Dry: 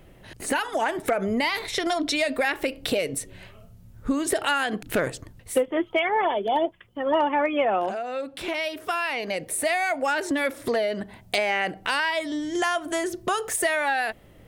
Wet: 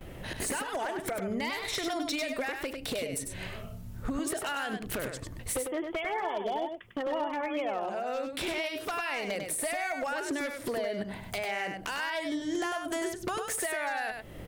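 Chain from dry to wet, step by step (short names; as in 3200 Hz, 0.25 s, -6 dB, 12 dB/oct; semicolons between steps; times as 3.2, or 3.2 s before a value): gate with hold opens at -45 dBFS; compressor 10:1, threshold -37 dBFS, peak gain reduction 20 dB; wavefolder -32.5 dBFS; echo 99 ms -5.5 dB; gain +6.5 dB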